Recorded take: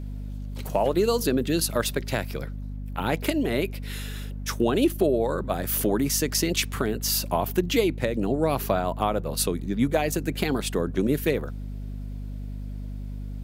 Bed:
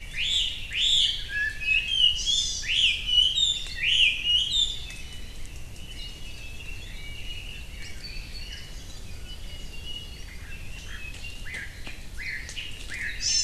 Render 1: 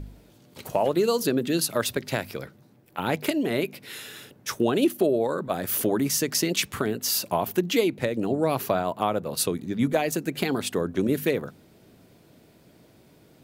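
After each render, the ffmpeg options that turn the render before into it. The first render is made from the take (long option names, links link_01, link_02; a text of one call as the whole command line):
ffmpeg -i in.wav -af "bandreject=frequency=50:width_type=h:width=4,bandreject=frequency=100:width_type=h:width=4,bandreject=frequency=150:width_type=h:width=4,bandreject=frequency=200:width_type=h:width=4,bandreject=frequency=250:width_type=h:width=4" out.wav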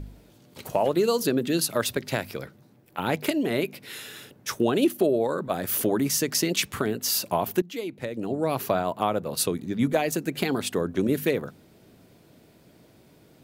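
ffmpeg -i in.wav -filter_complex "[0:a]asplit=2[link_01][link_02];[link_01]atrim=end=7.62,asetpts=PTS-STARTPTS,afade=type=out:start_time=7.616:duration=0.004:curve=hsin:silence=0.158489[link_03];[link_02]atrim=start=7.62,asetpts=PTS-STARTPTS,afade=type=in:duration=1.11:silence=0.158489[link_04];[link_03][link_04]concat=n=2:v=0:a=1" out.wav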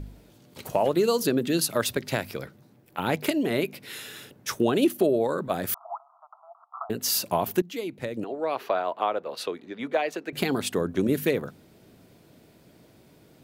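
ffmpeg -i in.wav -filter_complex "[0:a]asettb=1/sr,asplit=3[link_01][link_02][link_03];[link_01]atrim=end=5.744[link_04];[link_02]atrim=start=5.74:end=6.9,asetpts=PTS-STARTPTS,afade=type=in:duration=0.004:curve=qsin,afade=type=out:start_time=1.156:duration=0.004:curve=qsin,asuperpass=centerf=940:order=20:qfactor=1.4[link_05];[link_03]atrim=start=6.896[link_06];[link_04][link_05]acrossfade=duration=0.004:curve1=hsin:curve2=qsin[link_07];[link_07][link_06]acrossfade=duration=0.004:curve1=qsin:curve2=hsin,asettb=1/sr,asplit=3[link_08][link_09][link_10];[link_08]atrim=end=8.244[link_11];[link_09]atrim=start=8.24:end=10.33,asetpts=PTS-STARTPTS,afade=type=in:duration=0.004:curve=qsin,afade=type=out:start_time=2.086:duration=0.004:curve=qsin,acrossover=split=350 4300:gain=0.0708 1 0.1[link_12][link_13][link_14];[link_12][link_13][link_14]amix=inputs=3:normalize=0[link_15];[link_10]atrim=start=10.326[link_16];[link_11][link_15]acrossfade=duration=0.004:curve1=hsin:curve2=qsin[link_17];[link_17][link_16]acrossfade=duration=0.004:curve1=qsin:curve2=hsin" out.wav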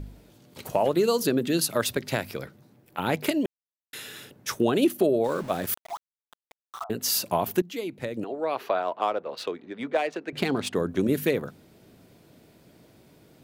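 ffmpeg -i in.wav -filter_complex "[0:a]asettb=1/sr,asplit=3[link_01][link_02][link_03];[link_01]atrim=end=5.244[link_04];[link_02]atrim=start=5.24:end=6.84,asetpts=PTS-STARTPTS,afade=type=in:duration=0.004:curve=qsin,afade=type=out:start_time=1.596:duration=0.004:curve=qsin,aeval=exprs='val(0)*gte(abs(val(0)),0.0112)':channel_layout=same[link_05];[link_03]atrim=start=6.836[link_06];[link_04][link_05]acrossfade=duration=0.004:curve1=hsin:curve2=qsin[link_07];[link_07][link_06]acrossfade=duration=0.004:curve1=qsin:curve2=hsin,asettb=1/sr,asplit=3[link_08][link_09][link_10];[link_08]atrim=end=8.824[link_11];[link_09]atrim=start=8.82:end=10.75,asetpts=PTS-STARTPTS,afade=type=in:duration=0.004:curve=qsin,afade=type=out:start_time=1.926:duration=0.004:curve=qsin,adynamicsmooth=sensitivity=7.5:basefreq=4000[link_12];[link_10]atrim=start=10.746[link_13];[link_11][link_12]acrossfade=duration=0.004:curve1=hsin:curve2=qsin[link_14];[link_14][link_13]acrossfade=duration=0.004:curve1=qsin:curve2=hsin,asplit=3[link_15][link_16][link_17];[link_15]atrim=end=3.46,asetpts=PTS-STARTPTS,afade=type=out:start_time=3.456:duration=0.004:curve=hsin[link_18];[link_16]atrim=start=3.46:end=3.93,asetpts=PTS-STARTPTS,volume=0[link_19];[link_17]atrim=start=3.93,asetpts=PTS-STARTPTS,afade=type=in:duration=0.004:curve=hsin[link_20];[link_18][link_19][link_20]concat=n=3:v=0:a=1" out.wav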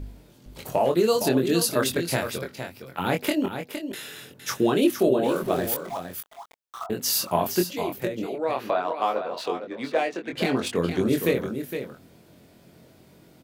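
ffmpeg -i in.wav -filter_complex "[0:a]asplit=2[link_01][link_02];[link_02]adelay=23,volume=-4dB[link_03];[link_01][link_03]amix=inputs=2:normalize=0,aecho=1:1:462:0.376" out.wav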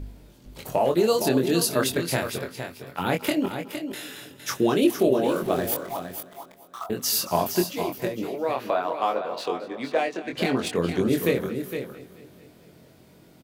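ffmpeg -i in.wav -af "aecho=1:1:223|446|669|892|1115|1338:0.133|0.08|0.048|0.0288|0.0173|0.0104" out.wav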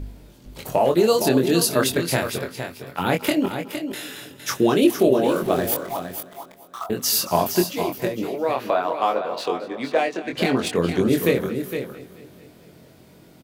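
ffmpeg -i in.wav -af "volume=3.5dB" out.wav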